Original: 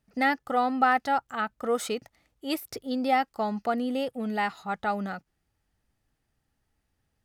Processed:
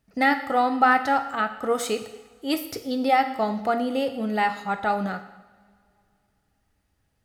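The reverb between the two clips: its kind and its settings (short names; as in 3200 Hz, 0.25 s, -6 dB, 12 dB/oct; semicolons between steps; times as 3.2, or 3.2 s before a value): two-slope reverb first 0.88 s, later 2.8 s, from -20 dB, DRR 7 dB; gain +3.5 dB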